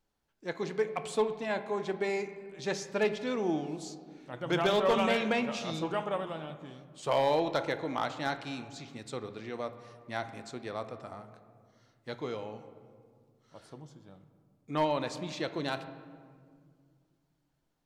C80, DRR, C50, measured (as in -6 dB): 13.0 dB, 9.5 dB, 11.5 dB